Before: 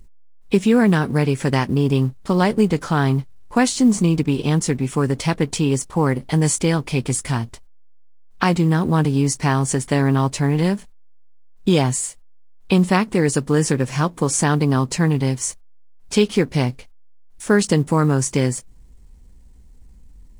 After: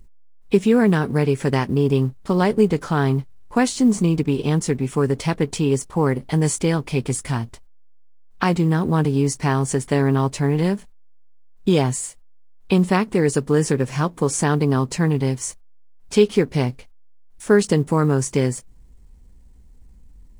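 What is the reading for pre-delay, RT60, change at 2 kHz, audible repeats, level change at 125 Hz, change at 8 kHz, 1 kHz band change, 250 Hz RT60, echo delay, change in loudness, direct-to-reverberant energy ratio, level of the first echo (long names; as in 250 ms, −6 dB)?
no reverb audible, no reverb audible, −2.5 dB, no echo audible, −1.5 dB, −4.0 dB, −2.0 dB, no reverb audible, no echo audible, −1.0 dB, no reverb audible, no echo audible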